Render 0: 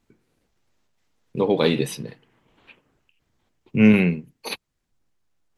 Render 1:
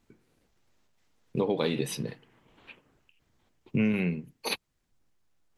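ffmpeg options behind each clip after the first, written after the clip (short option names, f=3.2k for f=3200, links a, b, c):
-af "acompressor=threshold=-24dB:ratio=6"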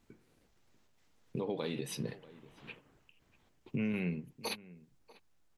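-filter_complex "[0:a]alimiter=level_in=2dB:limit=-24dB:level=0:latency=1:release=384,volume=-2dB,asplit=2[a][b];[b]adelay=641.4,volume=-19dB,highshelf=f=4k:g=-14.4[c];[a][c]amix=inputs=2:normalize=0"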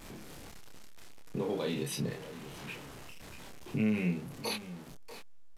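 -filter_complex "[0:a]aeval=exprs='val(0)+0.5*0.00596*sgn(val(0))':c=same,asplit=2[a][b];[b]adelay=28,volume=-3dB[c];[a][c]amix=inputs=2:normalize=0,aresample=32000,aresample=44100"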